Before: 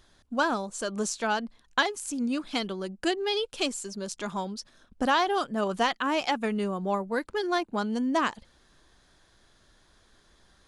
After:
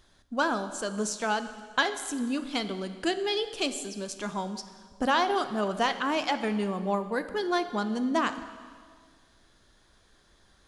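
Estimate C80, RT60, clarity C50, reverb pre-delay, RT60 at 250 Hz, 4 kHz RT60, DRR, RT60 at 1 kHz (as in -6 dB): 12.5 dB, 1.8 s, 11.0 dB, 7 ms, 1.9 s, 1.6 s, 9.5 dB, 1.8 s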